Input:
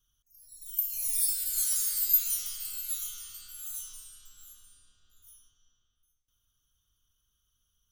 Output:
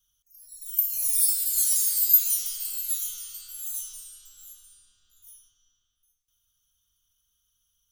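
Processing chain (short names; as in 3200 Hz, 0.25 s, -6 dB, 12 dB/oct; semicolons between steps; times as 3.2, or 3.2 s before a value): high shelf 2400 Hz +10.5 dB; gain -4.5 dB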